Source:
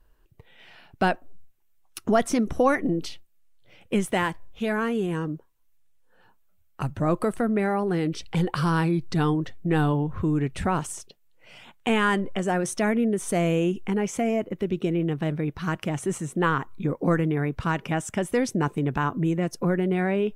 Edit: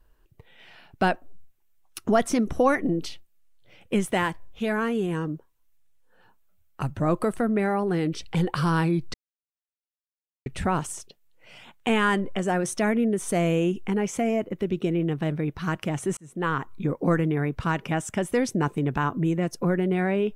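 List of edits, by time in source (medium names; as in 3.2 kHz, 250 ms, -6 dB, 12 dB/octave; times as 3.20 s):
9.14–10.46 s: mute
16.17–16.81 s: fade in equal-power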